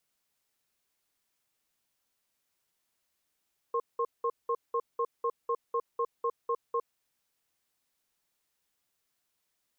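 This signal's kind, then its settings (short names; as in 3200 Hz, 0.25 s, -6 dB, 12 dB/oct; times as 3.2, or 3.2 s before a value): cadence 468 Hz, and 1070 Hz, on 0.06 s, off 0.19 s, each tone -29 dBFS 3.23 s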